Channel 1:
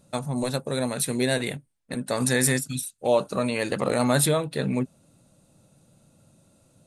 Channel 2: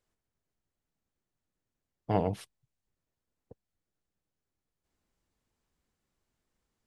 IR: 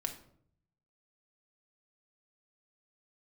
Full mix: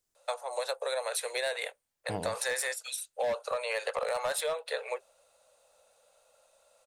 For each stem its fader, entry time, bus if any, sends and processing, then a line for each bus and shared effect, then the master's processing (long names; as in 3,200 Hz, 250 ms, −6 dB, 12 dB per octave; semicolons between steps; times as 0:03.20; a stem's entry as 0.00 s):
+1.5 dB, 0.15 s, no send, Butterworth high-pass 470 Hz 72 dB per octave; high-shelf EQ 7,600 Hz −9.5 dB; hard clipping −19.5 dBFS, distortion −16 dB
−5.5 dB, 0.00 s, no send, bass and treble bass −1 dB, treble +13 dB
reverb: not used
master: downward compressor 6 to 1, threshold −29 dBFS, peak gain reduction 9 dB